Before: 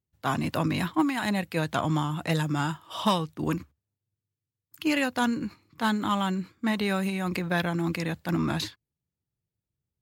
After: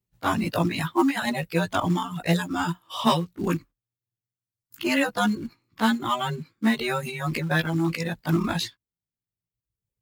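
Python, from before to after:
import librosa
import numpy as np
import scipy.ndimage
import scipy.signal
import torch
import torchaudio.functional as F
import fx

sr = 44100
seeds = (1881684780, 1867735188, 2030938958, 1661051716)

p1 = fx.frame_reverse(x, sr, frame_ms=36.0)
p2 = fx.dereverb_blind(p1, sr, rt60_s=1.2)
p3 = fx.quant_float(p2, sr, bits=2)
p4 = p2 + (p3 * 10.0 ** (-5.0 / 20.0))
y = p4 * 10.0 ** (3.0 / 20.0)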